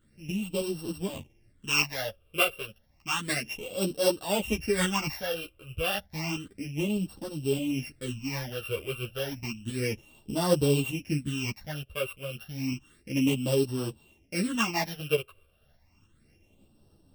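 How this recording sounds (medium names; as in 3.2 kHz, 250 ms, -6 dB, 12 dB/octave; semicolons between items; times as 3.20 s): a buzz of ramps at a fixed pitch in blocks of 16 samples; phasing stages 8, 0.31 Hz, lowest notch 240–2200 Hz; tremolo saw up 3.3 Hz, depth 40%; a shimmering, thickened sound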